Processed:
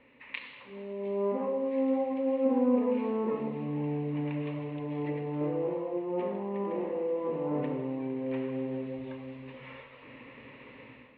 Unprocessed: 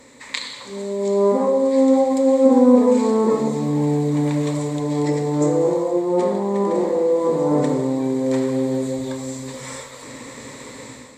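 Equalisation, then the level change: ladder low-pass 2900 Hz, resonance 80%; air absorption 400 m; 0.0 dB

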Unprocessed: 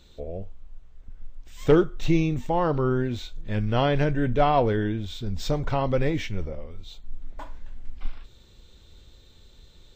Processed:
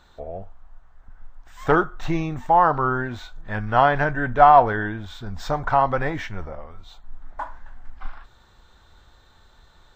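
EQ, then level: band shelf 1100 Hz +14.5 dB; -3.0 dB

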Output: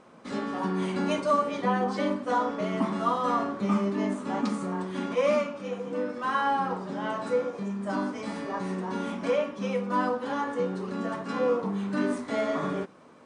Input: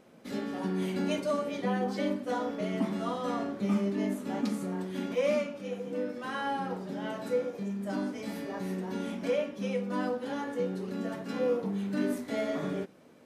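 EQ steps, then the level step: brick-wall FIR low-pass 9800 Hz; bell 1100 Hz +11 dB 0.74 oct; +2.0 dB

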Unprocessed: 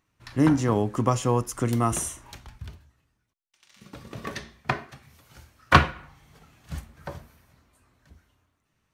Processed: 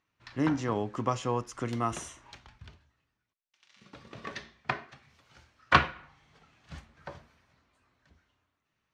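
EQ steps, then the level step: air absorption 150 m; tilt +2 dB/oct; -4.0 dB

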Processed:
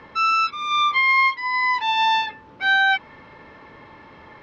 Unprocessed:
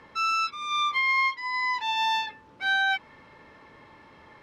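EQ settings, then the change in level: LPF 8700 Hz 12 dB/oct; air absorption 93 m; +7.5 dB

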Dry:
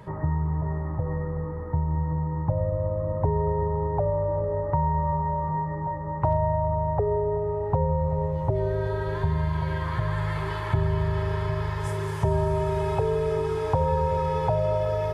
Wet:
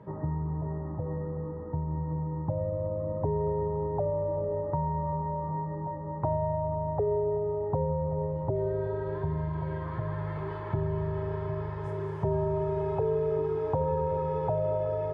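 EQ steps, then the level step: band-pass 330 Hz, Q 0.55; bell 240 Hz +2.5 dB; -2.0 dB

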